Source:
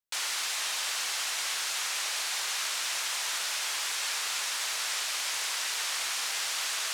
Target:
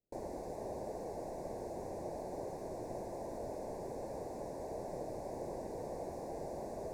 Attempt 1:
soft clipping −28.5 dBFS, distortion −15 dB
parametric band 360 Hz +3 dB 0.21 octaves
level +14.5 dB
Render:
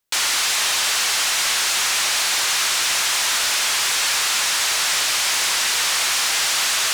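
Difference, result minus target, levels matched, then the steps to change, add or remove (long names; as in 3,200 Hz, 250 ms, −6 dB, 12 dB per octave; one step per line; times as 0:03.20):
1,000 Hz band −7.5 dB
add after soft clipping: inverse Chebyshev low-pass filter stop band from 1,200 Hz, stop band 40 dB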